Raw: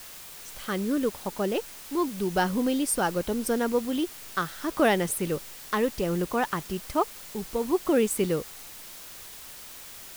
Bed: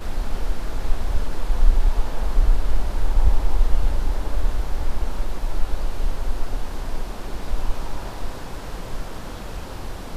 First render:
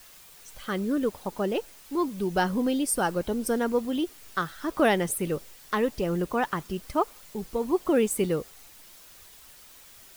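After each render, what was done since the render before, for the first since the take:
broadband denoise 8 dB, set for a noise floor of −44 dBFS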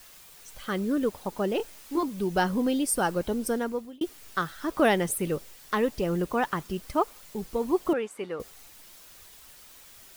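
0:01.57–0:02.03: double-tracking delay 24 ms −4 dB
0:03.24–0:04.01: fade out equal-power
0:07.93–0:08.40: resonant band-pass 1,200 Hz, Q 0.9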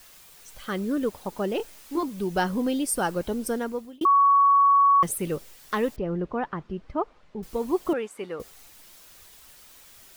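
0:04.05–0:05.03: beep over 1,120 Hz −14.5 dBFS
0:05.96–0:07.43: head-to-tape spacing loss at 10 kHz 36 dB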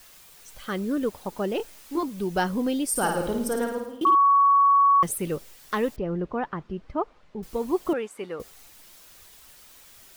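0:02.90–0:04.15: flutter between parallel walls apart 9.3 metres, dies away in 0.71 s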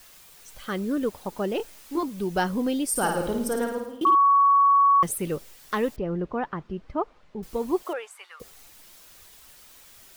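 0:07.82–0:08.40: high-pass filter 380 Hz → 1,300 Hz 24 dB per octave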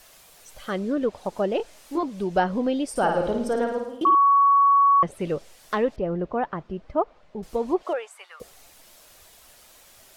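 treble cut that deepens with the level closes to 2,600 Hz, closed at −19 dBFS
parametric band 630 Hz +7.5 dB 0.67 octaves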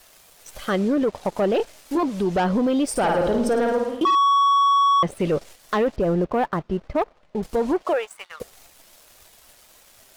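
leveller curve on the samples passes 2
brickwall limiter −15 dBFS, peak gain reduction 5.5 dB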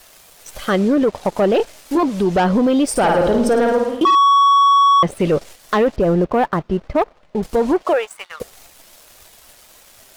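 level +5.5 dB

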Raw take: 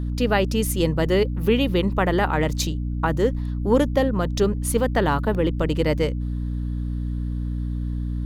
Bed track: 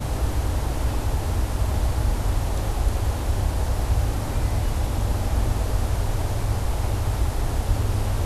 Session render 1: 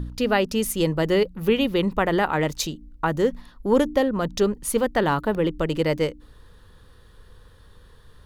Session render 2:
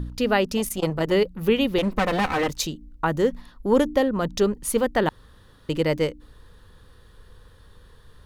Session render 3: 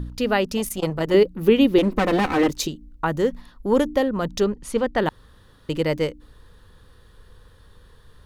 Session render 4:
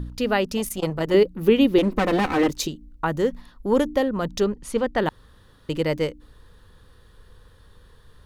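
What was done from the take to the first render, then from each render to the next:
hum removal 60 Hz, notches 5
0:00.57–0:01.12: saturating transformer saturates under 460 Hz; 0:01.78–0:02.49: lower of the sound and its delayed copy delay 3.9 ms; 0:05.09–0:05.69: fill with room tone
0:01.14–0:02.68: parametric band 320 Hz +10 dB; 0:04.44–0:04.98: high-frequency loss of the air 65 metres
level −1 dB

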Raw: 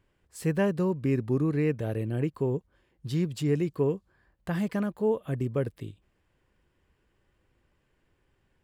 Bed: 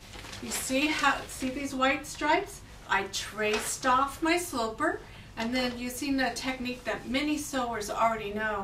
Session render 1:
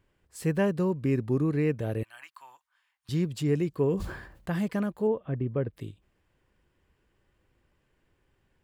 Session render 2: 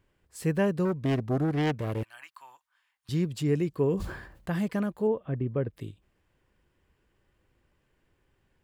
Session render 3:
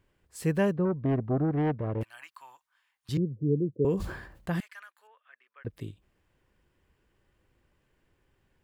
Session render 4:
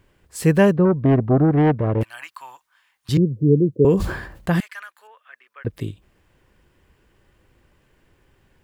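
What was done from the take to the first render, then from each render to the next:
0:02.03–0:03.09: inverse Chebyshev high-pass filter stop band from 470 Hz; 0:03.71–0:04.50: level that may fall only so fast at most 65 dB per second; 0:05.07–0:05.73: high-frequency loss of the air 400 metres
0:00.85–0:02.14: phase distortion by the signal itself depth 0.53 ms
0:00.72–0:02.01: low-pass filter 1,300 Hz; 0:03.17–0:03.85: Chebyshev band-pass filter 100–530 Hz, order 5; 0:04.60–0:05.65: four-pole ladder high-pass 1,300 Hz, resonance 40%
level +11 dB

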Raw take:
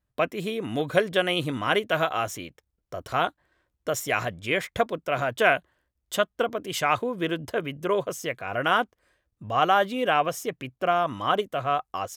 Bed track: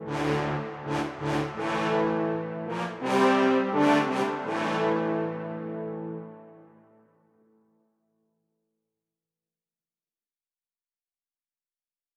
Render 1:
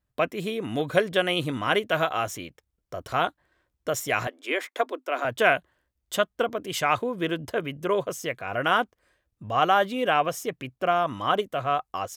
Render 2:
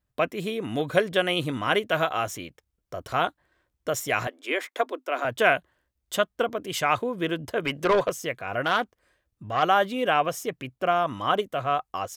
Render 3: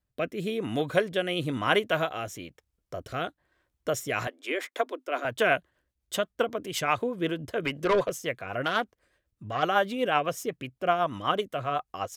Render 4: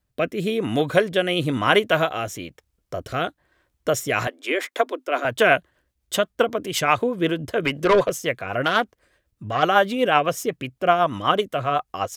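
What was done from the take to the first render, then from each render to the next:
0:04.27–0:05.25: Chebyshev high-pass with heavy ripple 250 Hz, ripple 3 dB
0:07.65–0:08.10: mid-hump overdrive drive 18 dB, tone 4,100 Hz, clips at −12.5 dBFS; 0:08.62–0:09.63: saturating transformer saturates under 1,500 Hz
rotating-speaker cabinet horn 1 Hz, later 8 Hz, at 0:03.86
level +7 dB; brickwall limiter −2 dBFS, peak gain reduction 2 dB

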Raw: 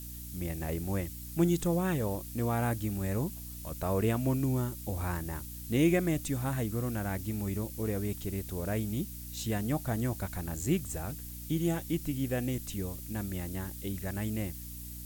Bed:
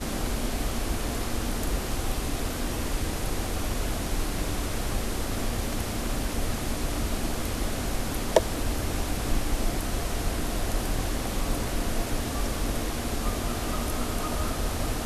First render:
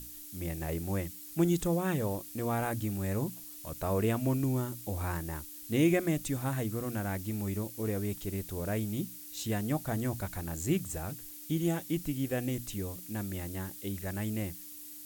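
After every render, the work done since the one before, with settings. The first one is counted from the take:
mains-hum notches 60/120/180/240 Hz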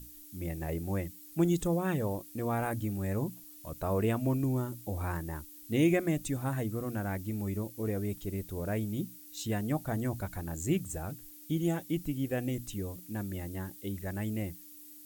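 broadband denoise 7 dB, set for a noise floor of −47 dBFS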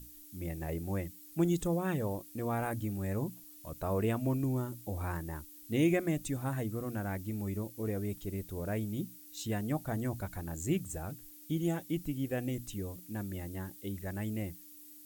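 level −2 dB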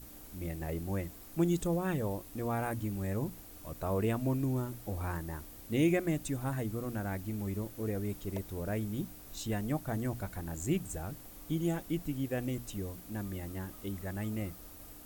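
mix in bed −25.5 dB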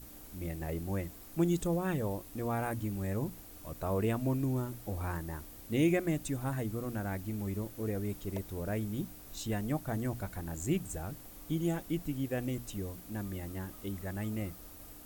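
no processing that can be heard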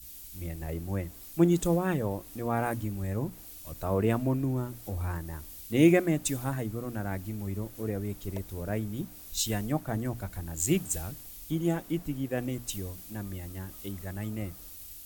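in parallel at +2 dB: downward compressor, threshold −41 dBFS, peak gain reduction 16.5 dB
on the sum: multiband upward and downward expander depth 100%

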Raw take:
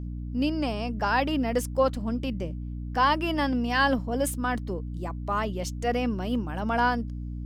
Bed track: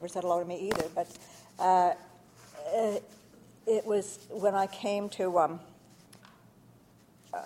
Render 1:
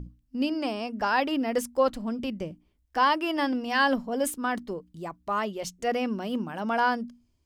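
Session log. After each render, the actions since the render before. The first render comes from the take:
mains-hum notches 60/120/180/240/300 Hz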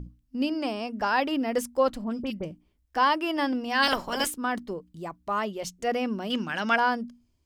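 0:02.04–0:02.45: all-pass dispersion highs, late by 40 ms, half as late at 2,600 Hz
0:03.82–0:04.26: ceiling on every frequency bin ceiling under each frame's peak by 25 dB
0:06.30–0:06.76: flat-topped bell 3,200 Hz +12.5 dB 2.7 octaves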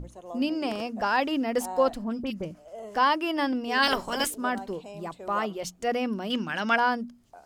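mix in bed track −12 dB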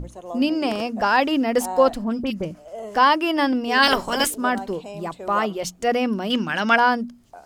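level +6.5 dB

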